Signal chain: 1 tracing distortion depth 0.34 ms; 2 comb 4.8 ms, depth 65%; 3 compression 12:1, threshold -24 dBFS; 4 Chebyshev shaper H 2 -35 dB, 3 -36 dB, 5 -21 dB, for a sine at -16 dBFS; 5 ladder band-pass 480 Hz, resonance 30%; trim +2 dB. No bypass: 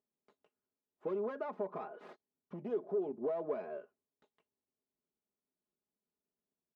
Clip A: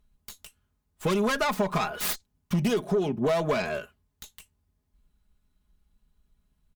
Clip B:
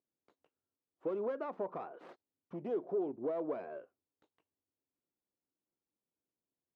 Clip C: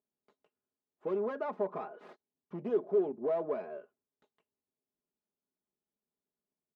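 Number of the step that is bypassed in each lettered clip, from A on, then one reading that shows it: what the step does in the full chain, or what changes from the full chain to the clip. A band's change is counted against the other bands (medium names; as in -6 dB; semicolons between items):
5, 500 Hz band -10.0 dB; 2, 250 Hz band +2.0 dB; 3, mean gain reduction 3.5 dB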